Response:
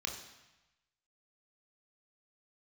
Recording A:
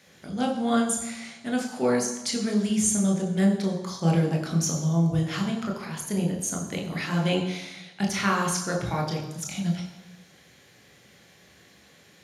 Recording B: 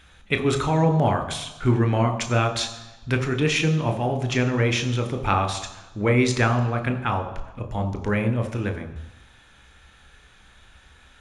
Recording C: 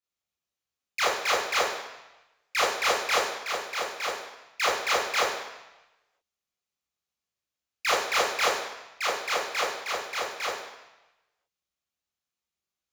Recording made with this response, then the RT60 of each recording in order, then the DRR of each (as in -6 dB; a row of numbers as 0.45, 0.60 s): A; 1.0, 1.0, 1.0 s; 1.0, 6.5, -7.5 dB